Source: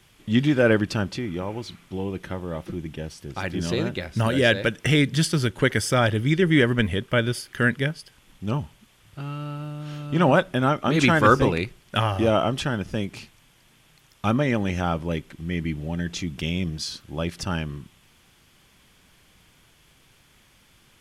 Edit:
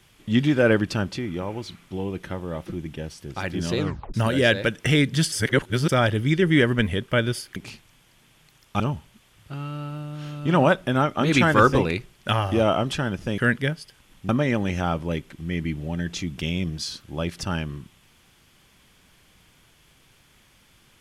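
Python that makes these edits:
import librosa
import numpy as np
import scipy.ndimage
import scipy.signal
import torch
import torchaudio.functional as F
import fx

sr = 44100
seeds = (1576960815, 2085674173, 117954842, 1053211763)

y = fx.edit(x, sr, fx.tape_stop(start_s=3.8, length_s=0.34),
    fx.reverse_span(start_s=5.32, length_s=0.57),
    fx.swap(start_s=7.56, length_s=0.91, other_s=13.05, other_length_s=1.24), tone=tone)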